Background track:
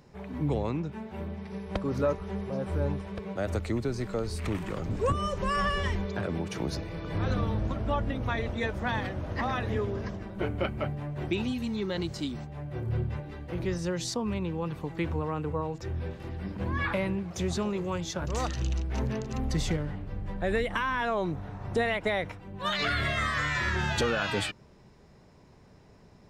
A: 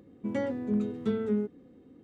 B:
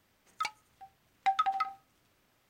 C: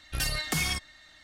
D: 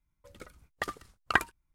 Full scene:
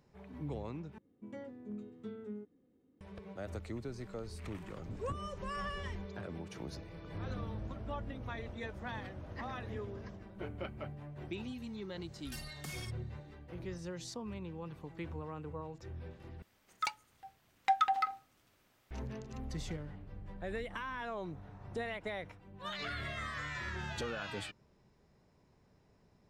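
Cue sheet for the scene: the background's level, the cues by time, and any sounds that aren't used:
background track −12 dB
0:00.98: overwrite with A −16 dB
0:12.12: mix in C −17 dB
0:16.42: overwrite with B −0.5 dB
not used: D

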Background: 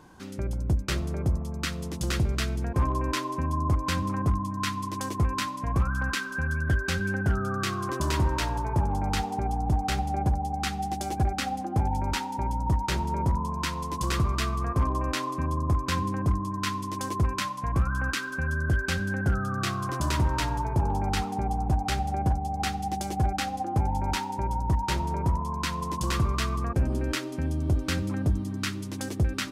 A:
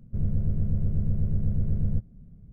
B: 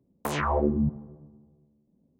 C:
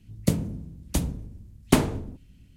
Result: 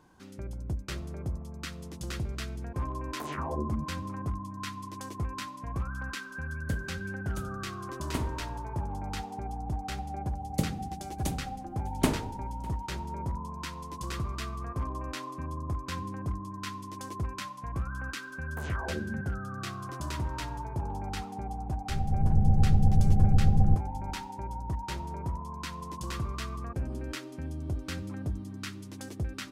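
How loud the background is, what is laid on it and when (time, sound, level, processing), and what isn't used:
background −8.5 dB
0:02.95: mix in B −10.5 dB
0:06.42: mix in C −15.5 dB
0:10.31: mix in C −6.5 dB + single-tap delay 603 ms −23.5 dB
0:18.32: mix in B −12.5 dB
0:21.76: mix in A −7 dB + automatic gain control

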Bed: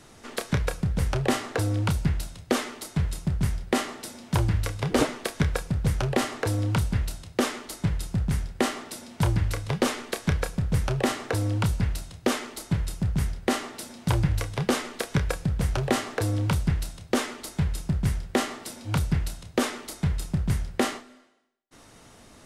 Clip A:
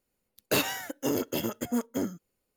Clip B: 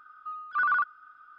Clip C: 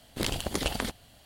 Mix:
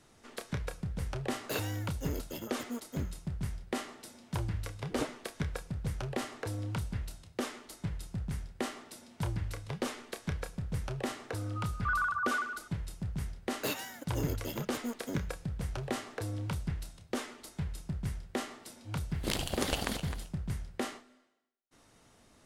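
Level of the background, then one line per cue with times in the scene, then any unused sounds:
bed −11 dB
0:00.98: mix in A −11 dB
0:11.30: mix in B −5.5 dB + echo through a band-pass that steps 148 ms, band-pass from 700 Hz, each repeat 0.7 octaves, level −1 dB
0:13.12: mix in A −9 dB
0:19.07: mix in C −3 dB, fades 0.10 s + feedback delay that plays each chunk backwards 133 ms, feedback 50%, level −10 dB

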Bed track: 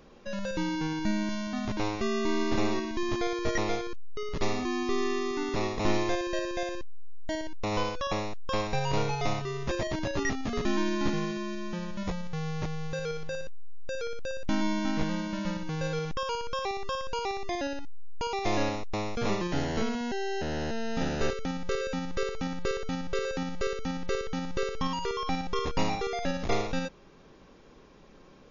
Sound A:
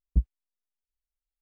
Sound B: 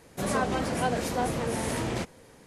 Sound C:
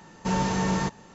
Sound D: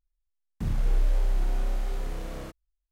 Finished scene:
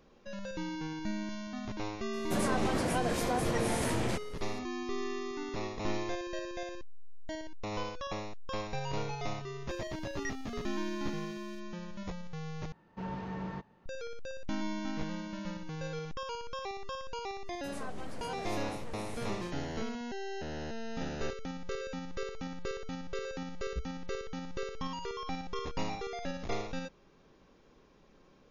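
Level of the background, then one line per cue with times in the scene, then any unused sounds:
bed track −7.5 dB
0:02.13: mix in B −1.5 dB + brickwall limiter −20.5 dBFS
0:09.09: mix in D −13.5 dB + inverse Chebyshev high-pass filter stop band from 1,300 Hz
0:12.72: overwrite with C −13 dB + high-frequency loss of the air 310 metres
0:17.46: mix in B −15.5 dB
0:23.60: mix in A −15 dB

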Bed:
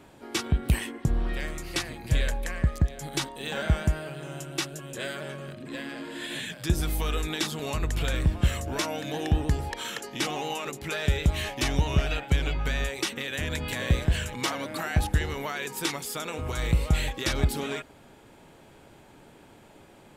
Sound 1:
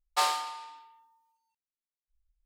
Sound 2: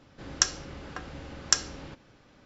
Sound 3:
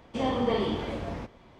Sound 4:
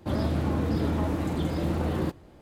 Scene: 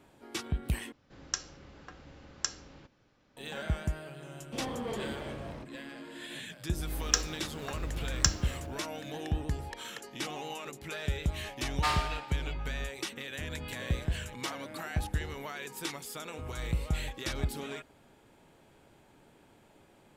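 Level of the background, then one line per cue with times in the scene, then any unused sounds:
bed −8 dB
0:00.92: overwrite with 2 −10 dB
0:04.38: mix in 3 −15 dB + leveller curve on the samples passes 2
0:06.72: mix in 2 −3 dB + log-companded quantiser 6 bits
0:11.66: mix in 1 −10 dB + parametric band 2,000 Hz +11.5 dB 2.1 octaves
not used: 4

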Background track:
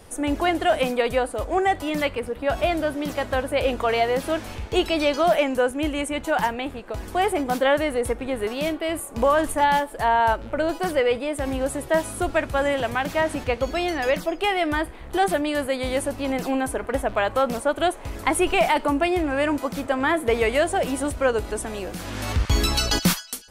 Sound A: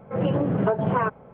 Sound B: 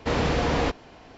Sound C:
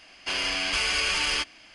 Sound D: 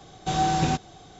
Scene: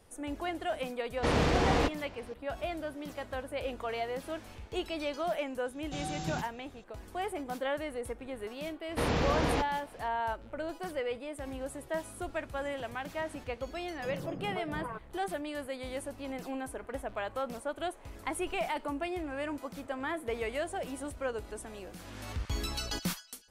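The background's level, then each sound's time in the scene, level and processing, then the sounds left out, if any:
background track −14 dB
0:01.17: mix in B −3 dB + phase distortion by the signal itself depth 0.12 ms
0:05.65: mix in D −11 dB + parametric band 840 Hz −7 dB 1.6 octaves
0:08.91: mix in B −5.5 dB
0:13.89: mix in A −17.5 dB
not used: C

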